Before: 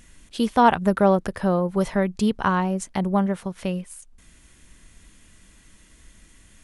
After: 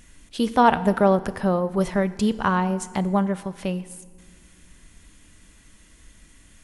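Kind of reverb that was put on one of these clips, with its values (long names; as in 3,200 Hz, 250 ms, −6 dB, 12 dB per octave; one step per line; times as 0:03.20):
feedback delay network reverb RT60 1.6 s, low-frequency decay 1.6×, high-frequency decay 0.75×, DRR 13.5 dB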